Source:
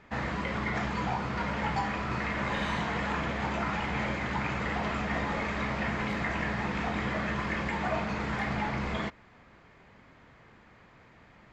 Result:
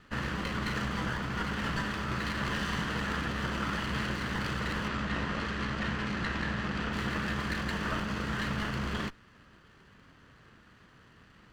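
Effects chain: comb filter that takes the minimum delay 0.66 ms; 4.88–6.93 s: distance through air 59 m

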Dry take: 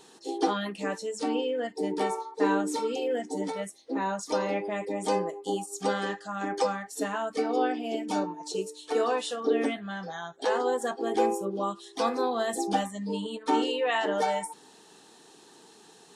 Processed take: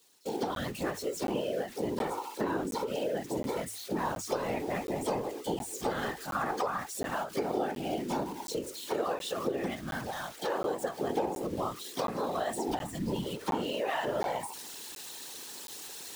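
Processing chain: zero-crossing glitches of -29.5 dBFS; 6.35–6.87 s: peaking EQ 1.1 kHz +11.5 dB 0.82 oct; compression 6:1, threshold -28 dBFS, peak gain reduction 10 dB; treble shelf 5.8 kHz -10 dB; gate with hold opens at -36 dBFS; whisper effect; hum notches 50/100 Hz; crackling interface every 0.72 s, samples 512, zero, from 0.55 s; endings held to a fixed fall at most 170 dB/s

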